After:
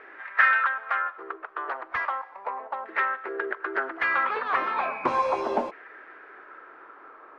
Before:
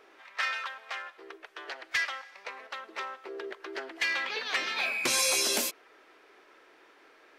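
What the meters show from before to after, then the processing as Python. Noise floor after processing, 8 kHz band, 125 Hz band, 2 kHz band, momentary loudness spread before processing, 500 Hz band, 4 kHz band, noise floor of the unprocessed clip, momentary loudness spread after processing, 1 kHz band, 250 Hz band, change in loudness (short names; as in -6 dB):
-49 dBFS, under -30 dB, n/a, +6.0 dB, 18 LU, +7.5 dB, -14.0 dB, -59 dBFS, 23 LU, +13.0 dB, +5.5 dB, +3.5 dB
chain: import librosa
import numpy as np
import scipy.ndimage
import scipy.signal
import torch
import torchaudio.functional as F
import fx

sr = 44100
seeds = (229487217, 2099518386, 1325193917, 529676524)

p1 = np.clip(10.0 ** (28.5 / 20.0) * x, -1.0, 1.0) / 10.0 ** (28.5 / 20.0)
p2 = x + (p1 * librosa.db_to_amplitude(-7.0))
p3 = fx.filter_lfo_lowpass(p2, sr, shape='saw_down', hz=0.35, low_hz=860.0, high_hz=1800.0, q=3.6)
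y = p3 * librosa.db_to_amplitude(2.5)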